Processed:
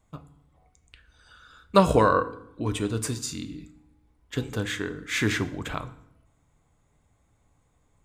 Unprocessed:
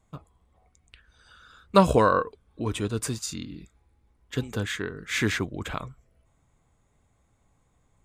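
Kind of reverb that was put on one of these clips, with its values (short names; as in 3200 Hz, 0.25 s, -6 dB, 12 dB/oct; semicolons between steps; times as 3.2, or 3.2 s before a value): FDN reverb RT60 0.74 s, low-frequency decay 1.35×, high-frequency decay 0.8×, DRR 10.5 dB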